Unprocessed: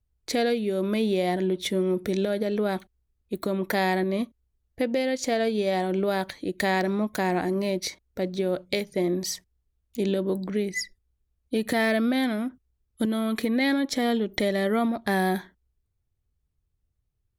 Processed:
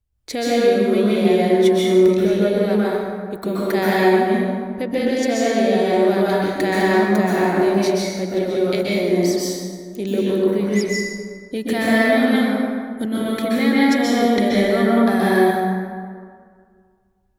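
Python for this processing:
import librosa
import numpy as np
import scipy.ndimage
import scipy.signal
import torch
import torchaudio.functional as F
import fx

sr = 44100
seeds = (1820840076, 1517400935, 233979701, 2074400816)

y = fx.rev_plate(x, sr, seeds[0], rt60_s=2.0, hf_ratio=0.5, predelay_ms=115, drr_db=-7.0)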